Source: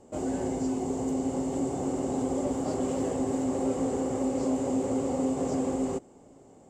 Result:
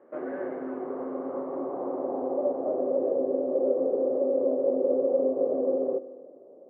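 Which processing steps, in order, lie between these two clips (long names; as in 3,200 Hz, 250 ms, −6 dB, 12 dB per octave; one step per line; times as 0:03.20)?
low-pass filter sweep 1,700 Hz → 560 Hz, 0:00.43–0:03.25
loudspeaker in its box 330–3,200 Hz, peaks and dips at 340 Hz +6 dB, 560 Hz +8 dB, 830 Hz −6 dB, 1,200 Hz +5 dB, 1,700 Hz +3 dB, 2,900 Hz −6 dB
spring reverb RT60 1.8 s, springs 50 ms, chirp 65 ms, DRR 14.5 dB
level −4 dB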